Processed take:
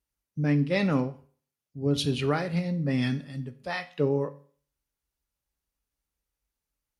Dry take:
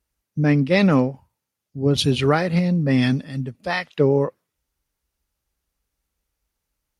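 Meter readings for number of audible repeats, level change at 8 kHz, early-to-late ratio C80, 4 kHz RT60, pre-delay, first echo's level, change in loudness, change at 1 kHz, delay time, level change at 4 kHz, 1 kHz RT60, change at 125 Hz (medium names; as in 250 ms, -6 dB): no echo, -7.5 dB, 20.5 dB, 0.40 s, 7 ms, no echo, -8.0 dB, -8.5 dB, no echo, -8.0 dB, 0.45 s, -7.5 dB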